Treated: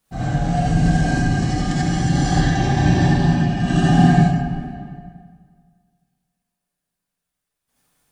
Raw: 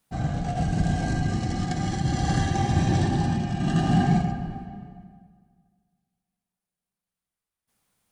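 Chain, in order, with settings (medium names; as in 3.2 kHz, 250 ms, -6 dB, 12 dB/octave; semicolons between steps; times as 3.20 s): 2.32–3.60 s: low-pass 6 kHz 12 dB/octave; gated-style reverb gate 110 ms rising, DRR -6.5 dB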